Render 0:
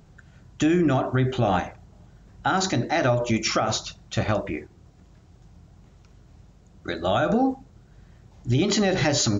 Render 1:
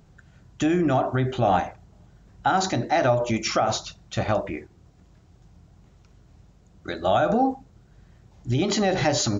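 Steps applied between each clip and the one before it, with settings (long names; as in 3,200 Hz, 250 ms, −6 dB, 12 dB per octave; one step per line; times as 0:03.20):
dynamic equaliser 760 Hz, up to +6 dB, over −35 dBFS, Q 1.6
level −2 dB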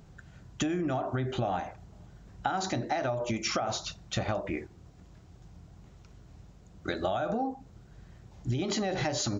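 downward compressor 12 to 1, threshold −28 dBFS, peak gain reduction 13 dB
level +1 dB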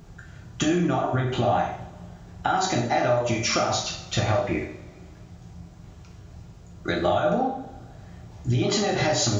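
coupled-rooms reverb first 0.52 s, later 2.1 s, from −20 dB, DRR −1 dB
level +4.5 dB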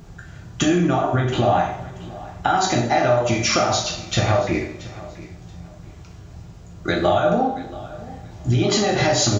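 repeating echo 679 ms, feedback 25%, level −18.5 dB
level +4.5 dB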